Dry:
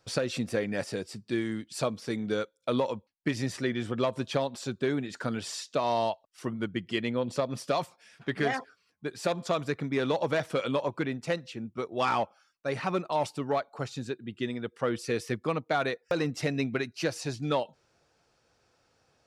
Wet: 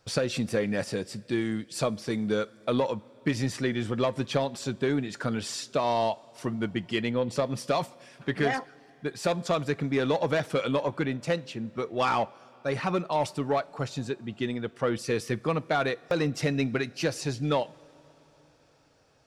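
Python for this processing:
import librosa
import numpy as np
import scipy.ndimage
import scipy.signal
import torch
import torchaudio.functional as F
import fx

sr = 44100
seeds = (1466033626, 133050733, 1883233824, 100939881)

p1 = fx.low_shelf(x, sr, hz=110.0, db=4.5)
p2 = 10.0 ** (-28.0 / 20.0) * np.tanh(p1 / 10.0 ** (-28.0 / 20.0))
p3 = p1 + (p2 * librosa.db_to_amplitude(-9.0))
y = fx.rev_double_slope(p3, sr, seeds[0], early_s=0.25, late_s=4.5, knee_db=-19, drr_db=17.0)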